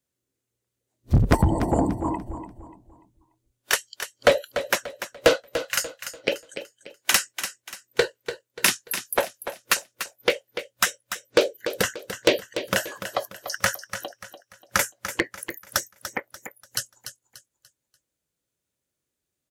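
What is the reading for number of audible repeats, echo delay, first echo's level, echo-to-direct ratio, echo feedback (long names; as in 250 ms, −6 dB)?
3, 292 ms, −10.5 dB, −10.0 dB, 35%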